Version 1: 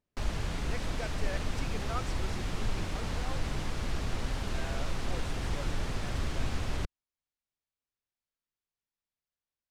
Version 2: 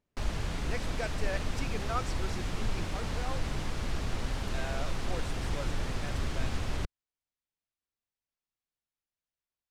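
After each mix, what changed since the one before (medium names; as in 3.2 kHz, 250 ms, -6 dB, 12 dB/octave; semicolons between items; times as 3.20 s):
speech +4.0 dB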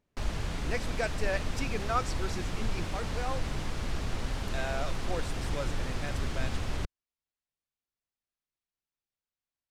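speech +4.5 dB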